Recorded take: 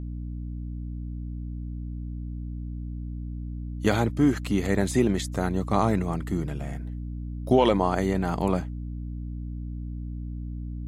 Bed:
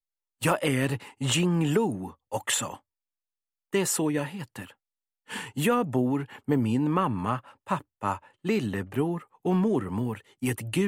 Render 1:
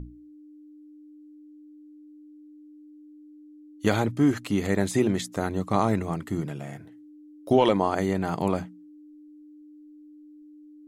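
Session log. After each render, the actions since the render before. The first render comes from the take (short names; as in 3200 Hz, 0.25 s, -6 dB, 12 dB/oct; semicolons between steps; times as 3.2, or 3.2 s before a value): notches 60/120/180/240 Hz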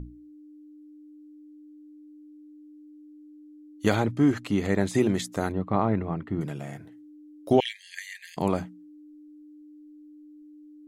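3.95–4.95 high shelf 7200 Hz -9.5 dB; 5.52–6.41 air absorption 430 m; 7.6–8.37 brick-wall FIR high-pass 1600 Hz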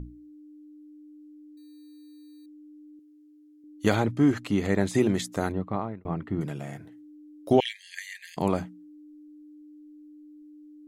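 1.57–2.46 sample-rate reducer 4200 Hz; 2.99–3.64 low shelf 350 Hz -10.5 dB; 5.52–6.05 fade out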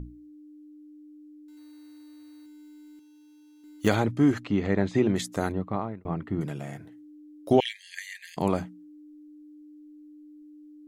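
1.48–3.88 companded quantiser 6-bit; 4.44–5.16 air absorption 160 m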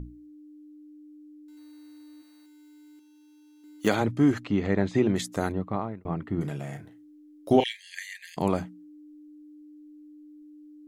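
2.21–4 HPF 440 Hz -> 160 Hz; 6.34–8.07 doubler 35 ms -10 dB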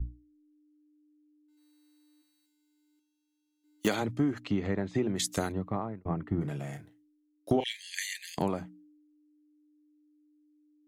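compressor 10:1, threshold -28 dBFS, peak gain reduction 14 dB; three-band expander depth 100%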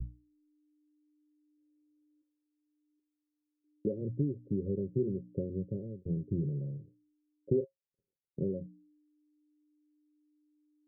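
in parallel at -10 dB: soft clip -22.5 dBFS, distortion -14 dB; on the sum: rippled Chebyshev low-pass 560 Hz, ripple 9 dB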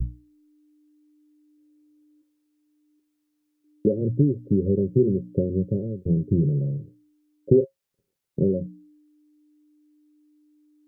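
gain +12 dB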